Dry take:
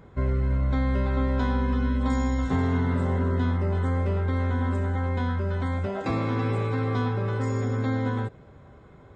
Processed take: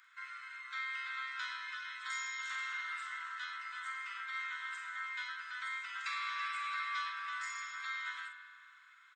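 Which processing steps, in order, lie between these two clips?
doubling 44 ms -7 dB; spring tank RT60 2.4 s, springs 41 ms, chirp 70 ms, DRR 8 dB; in parallel at -10 dB: saturation -27.5 dBFS, distortion -9 dB; on the sum: steep high-pass 1.3 kHz 48 dB/octave; trim -1.5 dB

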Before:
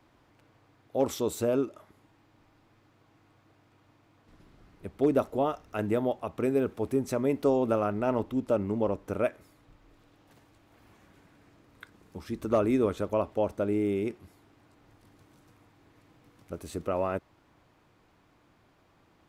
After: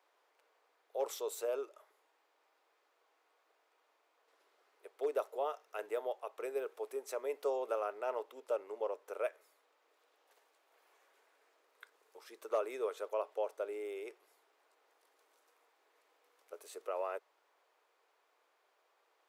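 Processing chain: elliptic high-pass 430 Hz, stop band 70 dB; treble shelf 7.1 kHz +4.5 dB; trim -7.5 dB

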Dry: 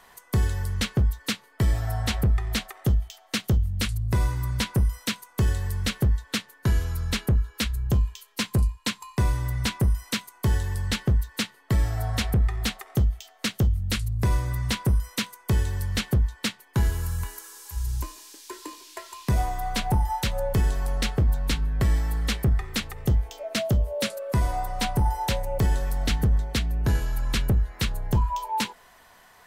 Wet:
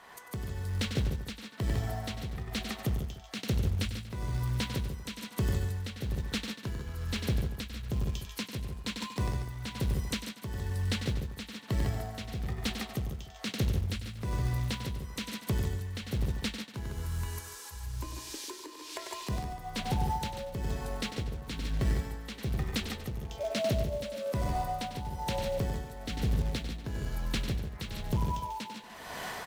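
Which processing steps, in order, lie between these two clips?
recorder AGC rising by 37 dB/s; high-pass 120 Hz 6 dB/octave; loudspeakers at several distances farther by 33 m -10 dB, 53 m -11 dB; short-mantissa float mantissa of 2-bit; treble shelf 6.7 kHz -11.5 dB; peak limiter -19 dBFS, peak gain reduction 10 dB; tremolo 1.1 Hz, depth 65%; on a send: delay 141 ms -9 dB; on the sum: dynamic bell 1.3 kHz, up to -6 dB, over -49 dBFS, Q 0.7

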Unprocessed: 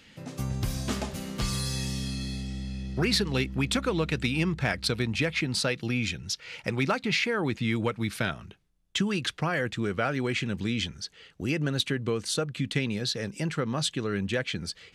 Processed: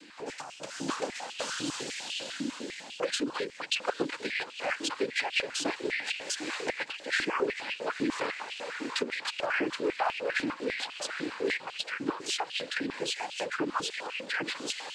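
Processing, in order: echo that smears into a reverb 868 ms, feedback 61%, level -14.5 dB; in parallel at -1 dB: level held to a coarse grid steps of 24 dB; on the sum: noise-vocoded speech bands 8; compression 6:1, threshold -30 dBFS, peak gain reduction 13.5 dB; step-sequenced high-pass 10 Hz 300–2800 Hz

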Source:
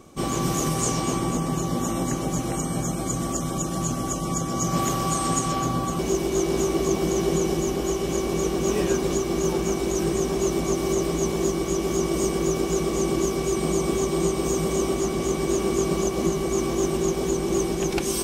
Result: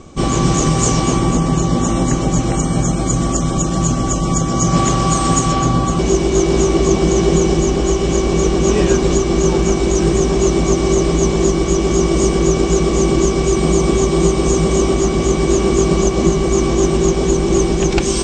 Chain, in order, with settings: elliptic low-pass 7.8 kHz, stop band 60 dB; bass shelf 99 Hz +11 dB; trim +9 dB

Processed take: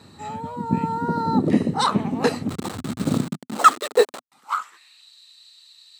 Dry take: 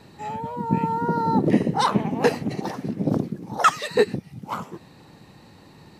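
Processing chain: 2.49–4.32 s: send-on-delta sampling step -26 dBFS; graphic EQ with 31 bands 125 Hz -6 dB, 250 Hz +5 dB, 1.25 kHz +8 dB, 4 kHz +8 dB, 8 kHz +11 dB; high-pass sweep 90 Hz -> 3.6 kHz, 3.01–5.10 s; trim -2.5 dB

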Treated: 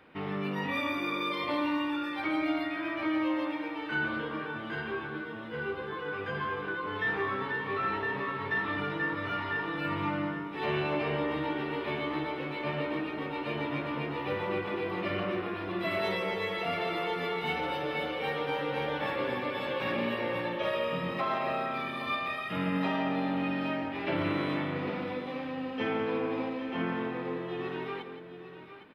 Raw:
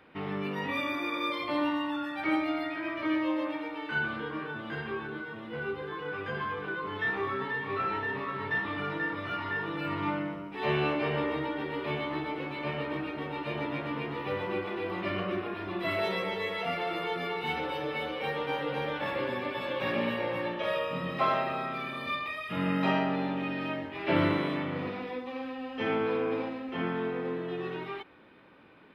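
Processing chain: peak limiter -22 dBFS, peak gain reduction 7.5 dB; on a send: multi-tap echo 169/809 ms -10.5/-11.5 dB

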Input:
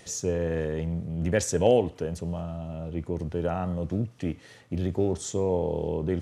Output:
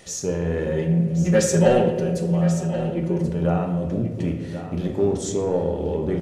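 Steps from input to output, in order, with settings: 0.66–3.28 s: comb 5.5 ms, depth 95%; saturation -14 dBFS, distortion -17 dB; delay 1082 ms -11.5 dB; reverberation RT60 1.4 s, pre-delay 3 ms, DRR 2.5 dB; trim +2.5 dB

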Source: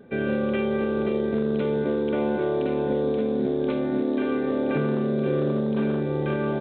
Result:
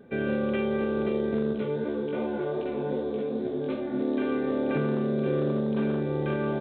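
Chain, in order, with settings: 1.53–4.00 s: chorus 2.6 Hz, delay 16.5 ms, depth 3.9 ms; trim -2.5 dB

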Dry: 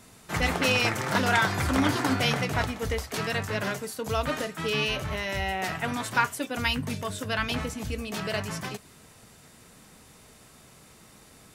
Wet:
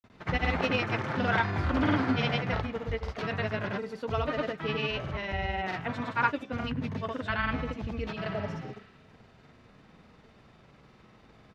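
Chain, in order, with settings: distance through air 260 m; granulator, pitch spread up and down by 0 st; spectral replace 8.36–9.04 s, 1–5 kHz both

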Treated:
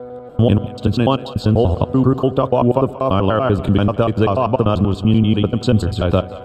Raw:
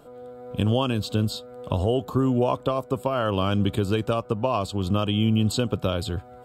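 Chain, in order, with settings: slices played last to first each 97 ms, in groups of 4; low-pass 1.7 kHz 6 dB/octave; in parallel at -2 dB: gain riding within 4 dB; on the sum: two-band feedback delay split 500 Hz, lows 81 ms, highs 182 ms, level -16 dB; trim +4 dB

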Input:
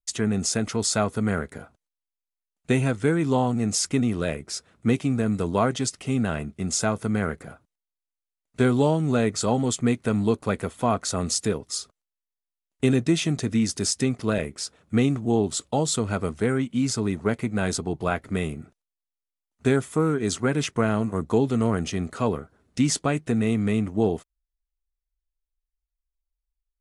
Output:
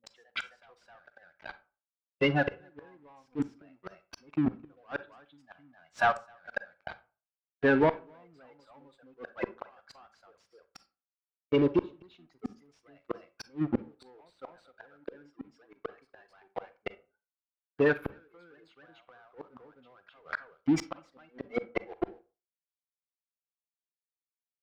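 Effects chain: spectral gate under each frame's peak -20 dB strong; spectral noise reduction 27 dB; high-pass 1.4 kHz 6 dB/octave; waveshaping leveller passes 5; reverse echo 285 ms -5 dB; in parallel at -8 dB: saturation -24 dBFS, distortion -8 dB; on the sum: inverted gate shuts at -15 dBFS, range -35 dB; on a send at -13 dB: reverberation RT60 0.40 s, pre-delay 39 ms; on the sum: Chebyshev shaper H 3 -18 dB, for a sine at -12.5 dBFS; distance through air 330 m; speed mistake 44.1 kHz file played as 48 kHz; trim +1 dB

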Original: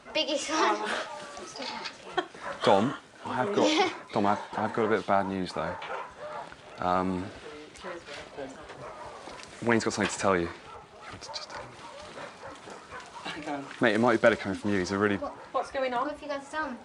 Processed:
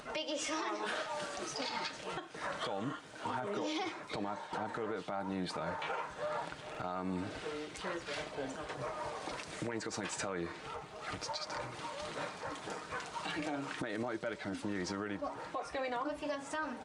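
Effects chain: comb 6.5 ms, depth 35%; compression 4:1, threshold -34 dBFS, peak gain reduction 16 dB; peak limiter -29 dBFS, peak gain reduction 10 dB; upward compressor, threshold -50 dBFS; buffer glitch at 6.70 s, samples 2048, times 1; trim +1 dB

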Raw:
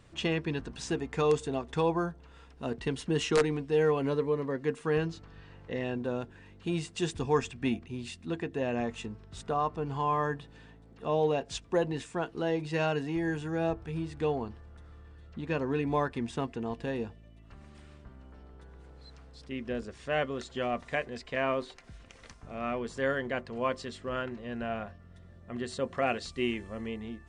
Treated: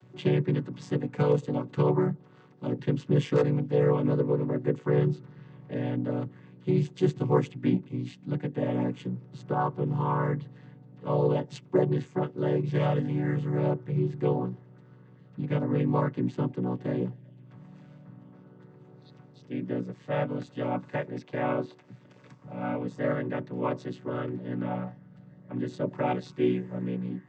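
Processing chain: vocoder on a held chord minor triad, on B2; trim +5 dB

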